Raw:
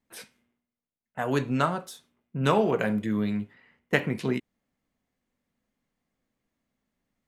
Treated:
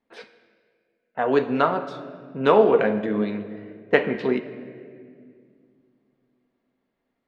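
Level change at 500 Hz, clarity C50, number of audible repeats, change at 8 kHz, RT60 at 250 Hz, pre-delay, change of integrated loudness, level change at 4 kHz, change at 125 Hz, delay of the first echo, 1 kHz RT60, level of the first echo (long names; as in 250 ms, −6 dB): +8.5 dB, 11.5 dB, no echo audible, below −15 dB, 3.2 s, 4 ms, +5.5 dB, +1.0 dB, −4.5 dB, no echo audible, 1.8 s, no echo audible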